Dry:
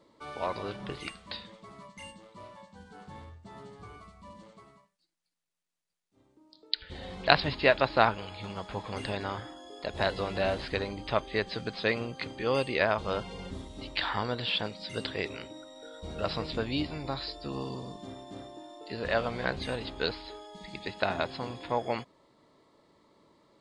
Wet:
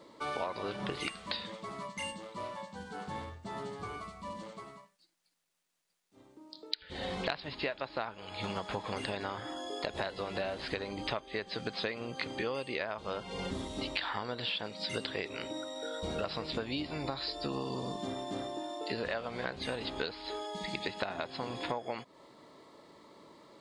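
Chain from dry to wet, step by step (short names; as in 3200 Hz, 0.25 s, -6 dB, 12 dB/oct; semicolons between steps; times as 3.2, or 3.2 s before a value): low shelf 110 Hz -11.5 dB; compressor 16:1, threshold -40 dBFS, peak gain reduction 25.5 dB; gain +8 dB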